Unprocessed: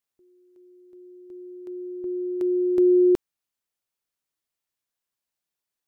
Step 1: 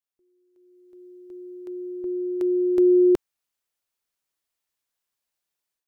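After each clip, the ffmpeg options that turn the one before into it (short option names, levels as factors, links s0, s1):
-af "equalizer=f=160:w=0.65:g=-4.5,dynaudnorm=f=520:g=3:m=3.35,volume=0.422"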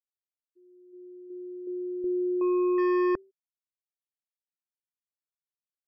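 -af "volume=14.1,asoftclip=hard,volume=0.0708,bandreject=f=193.1:t=h:w=4,bandreject=f=386.2:t=h:w=4,bandreject=f=579.3:t=h:w=4,afftfilt=real='re*gte(hypot(re,im),0.01)':imag='im*gte(hypot(re,im),0.01)':win_size=1024:overlap=0.75"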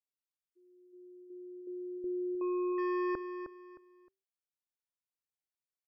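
-af "aecho=1:1:310|620|930:0.355|0.0958|0.0259,volume=0.473"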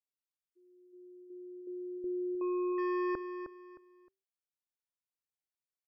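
-af anull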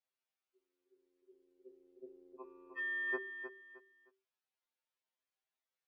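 -af "highpass=370,lowpass=3800,afftfilt=real='re*2.45*eq(mod(b,6),0)':imag='im*2.45*eq(mod(b,6),0)':win_size=2048:overlap=0.75,volume=2.24"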